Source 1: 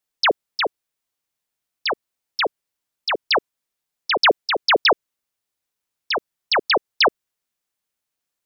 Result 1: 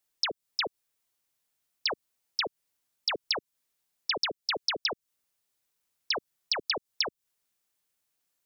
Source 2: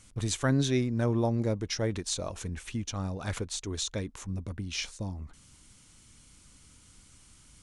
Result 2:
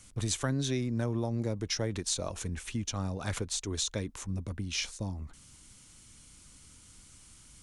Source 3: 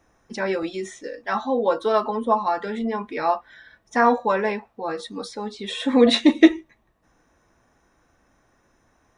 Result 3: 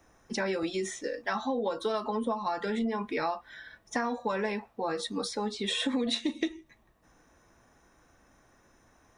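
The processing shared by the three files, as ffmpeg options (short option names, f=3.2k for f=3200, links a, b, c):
-filter_complex "[0:a]acrossover=split=220|3000[a][b][c];[b]acompressor=threshold=-29dB:ratio=2[d];[a][d][c]amix=inputs=3:normalize=0,highshelf=f=5.4k:g=4,acompressor=threshold=-26dB:ratio=16"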